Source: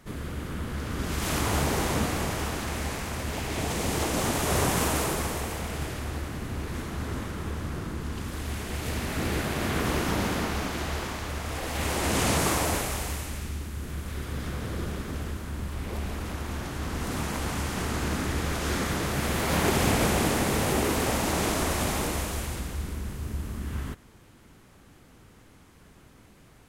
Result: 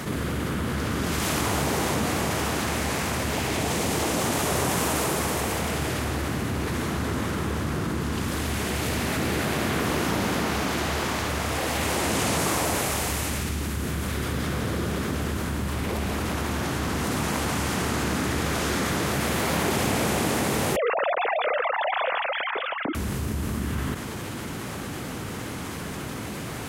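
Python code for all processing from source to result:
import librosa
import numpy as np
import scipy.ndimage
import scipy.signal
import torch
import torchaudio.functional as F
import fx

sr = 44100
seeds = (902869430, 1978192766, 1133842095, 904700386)

y = fx.chain(x, sr, fx.sine_speech(),
    fx.echo_single(ms=558, db=-21.5), at=(20.76, 22.95))
y = scipy.signal.sosfilt(scipy.signal.butter(2, 92.0, 'highpass', fs=sr, output='sos'), y)
y = fx.env_flatten(y, sr, amount_pct=70)
y = y * 10.0 ** (-3.0 / 20.0)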